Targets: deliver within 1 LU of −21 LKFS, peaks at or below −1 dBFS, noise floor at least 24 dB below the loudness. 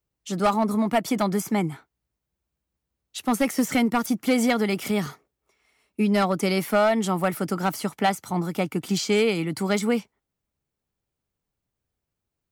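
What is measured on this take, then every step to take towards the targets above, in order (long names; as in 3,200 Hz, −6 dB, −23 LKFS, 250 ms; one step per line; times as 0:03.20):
share of clipped samples 0.6%; peaks flattened at −14.0 dBFS; integrated loudness −24.0 LKFS; sample peak −14.0 dBFS; target loudness −21.0 LKFS
→ clipped peaks rebuilt −14 dBFS
level +3 dB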